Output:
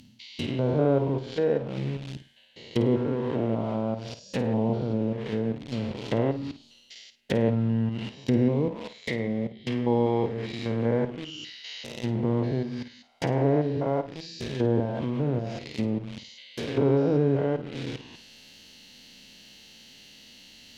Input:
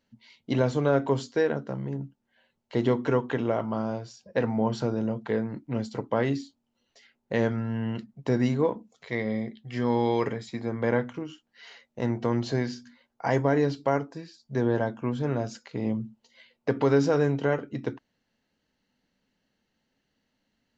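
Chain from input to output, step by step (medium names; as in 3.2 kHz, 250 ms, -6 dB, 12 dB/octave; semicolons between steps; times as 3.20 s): spectrogram pixelated in time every 200 ms; in parallel at -7.5 dB: word length cut 6-bit, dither none; on the sum: resonant high shelf 2.1 kHz +12 dB, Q 1.5; low-pass that closes with the level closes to 1 kHz, closed at -23 dBFS; reverse; upward compressor, threshold -34 dBFS; reverse; flutter echo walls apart 9 m, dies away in 0.27 s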